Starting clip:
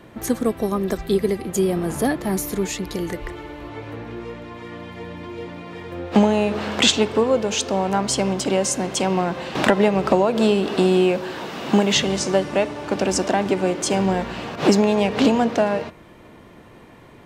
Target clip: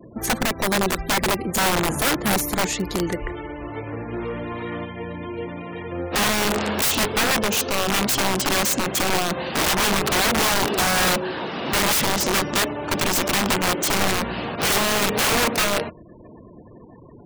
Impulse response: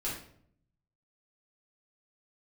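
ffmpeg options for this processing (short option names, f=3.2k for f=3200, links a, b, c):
-filter_complex "[0:a]asplit=3[a][b][c];[a]afade=t=out:st=4.12:d=0.02[d];[b]aeval=exprs='0.075*(cos(1*acos(clip(val(0)/0.075,-1,1)))-cos(1*PI/2))+0.0133*(cos(5*acos(clip(val(0)/0.075,-1,1)))-cos(5*PI/2))':c=same,afade=t=in:st=4.12:d=0.02,afade=t=out:st=4.84:d=0.02[e];[c]afade=t=in:st=4.84:d=0.02[f];[d][e][f]amix=inputs=3:normalize=0,aeval=exprs='(mod(7.08*val(0)+1,2)-1)/7.08':c=same,afftfilt=real='re*gte(hypot(re,im),0.0112)':imag='im*gte(hypot(re,im),0.0112)':win_size=1024:overlap=0.75,volume=2.5dB"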